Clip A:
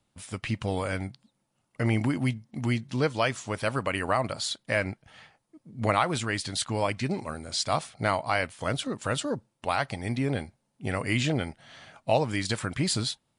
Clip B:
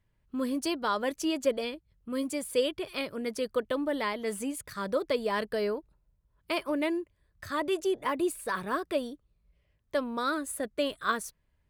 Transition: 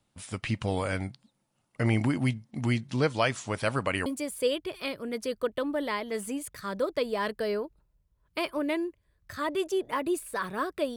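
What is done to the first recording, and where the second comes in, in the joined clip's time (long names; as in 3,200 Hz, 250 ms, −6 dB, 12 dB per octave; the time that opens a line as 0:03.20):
clip A
0:04.06: continue with clip B from 0:02.19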